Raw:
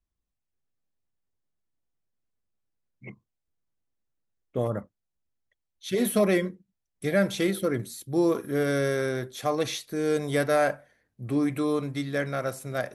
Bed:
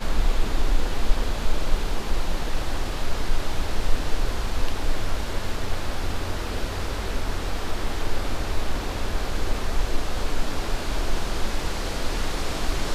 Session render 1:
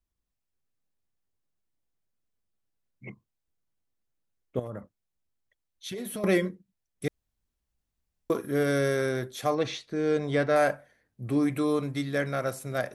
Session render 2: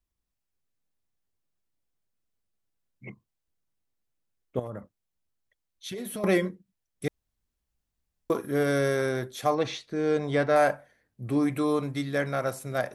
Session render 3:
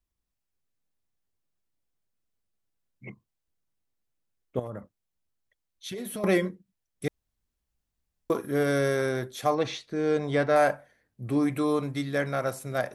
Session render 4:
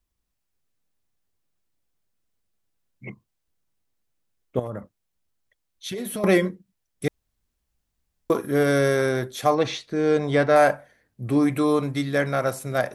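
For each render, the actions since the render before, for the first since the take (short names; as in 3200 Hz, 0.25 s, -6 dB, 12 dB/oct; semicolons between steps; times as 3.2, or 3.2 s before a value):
4.59–6.24 compressor, threshold -33 dBFS; 7.08–8.3 room tone; 9.54–10.56 air absorption 120 m
dynamic EQ 880 Hz, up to +5 dB, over -43 dBFS, Q 2.2
nothing audible
gain +5 dB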